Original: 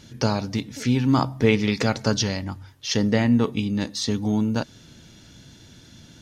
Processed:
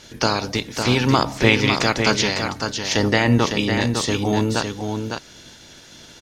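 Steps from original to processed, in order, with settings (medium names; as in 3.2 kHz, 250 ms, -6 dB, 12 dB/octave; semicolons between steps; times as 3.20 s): spectral peaks clipped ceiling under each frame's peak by 16 dB; delay 555 ms -6 dB; trim +2.5 dB; Nellymoser 88 kbps 44.1 kHz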